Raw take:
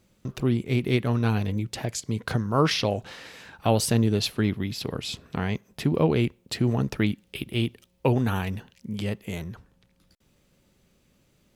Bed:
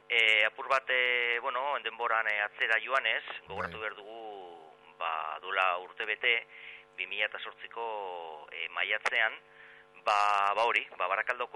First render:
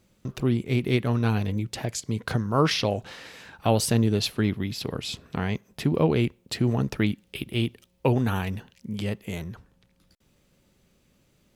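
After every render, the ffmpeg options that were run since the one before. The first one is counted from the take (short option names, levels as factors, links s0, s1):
-af anull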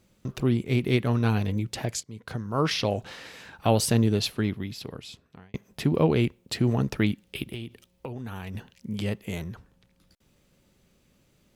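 -filter_complex "[0:a]asettb=1/sr,asplit=3[s0][s1][s2];[s0]atrim=end=7.544[s3];[s1]atrim=start=7.54:end=8.55,asetpts=PTS-STARTPTS,afade=t=in:d=0.004:c=qsin,afade=t=out:st=1.006:d=0.004:c=qsin,acompressor=threshold=0.0251:ratio=12:attack=3.2:release=140:knee=1:detection=peak[s4];[s2]atrim=start=8.546[s5];[s3][s4]acrossfade=d=0.004:c1=hsin:c2=qsin[s6];[s6][s5]acrossfade=d=0.004:c1=qsin:c2=hsin,asplit=3[s7][s8][s9];[s7]atrim=end=2.03,asetpts=PTS-STARTPTS,afade=t=out:st=2.026:d=0.004:c=hsin:silence=0.133352[s10];[s8]atrim=start=2.03:end=5.54,asetpts=PTS-STARTPTS,afade=t=in:d=0.96:silence=0.133352,afade=t=out:st=2.04:d=1.47[s11];[s9]atrim=start=5.54,asetpts=PTS-STARTPTS,afade=t=in:d=0.004:c=hsin[s12];[s10][s11][s12]concat=n=3:v=0:a=1"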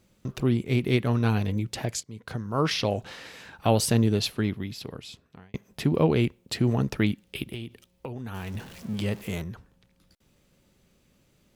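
-filter_complex "[0:a]asettb=1/sr,asplit=3[s0][s1][s2];[s0]atrim=end=8.344[s3];[s1]atrim=start=8.34:end=9.42,asetpts=PTS-STARTPTS,afade=t=in:d=0.004:c=qsin,afade=t=out:st=1.076:d=0.004:c=qsin,aeval=exprs='val(0)+0.5*0.00891*sgn(val(0))':c=same[s4];[s2]atrim=start=9.416[s5];[s3][s4]acrossfade=d=0.004:c1=hsin:c2=qsin[s6];[s6][s5]acrossfade=d=0.004:c1=qsin:c2=hsin"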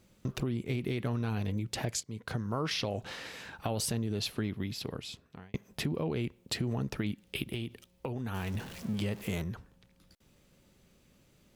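-af "alimiter=limit=0.126:level=0:latency=1:release=29,acompressor=threshold=0.0355:ratio=10"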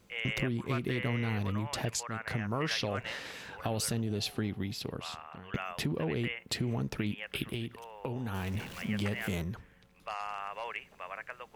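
-filter_complex "[1:a]volume=0.251[s0];[0:a][s0]amix=inputs=2:normalize=0"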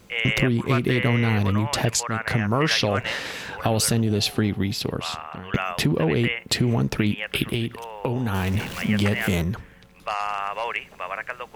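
-af "volume=3.76"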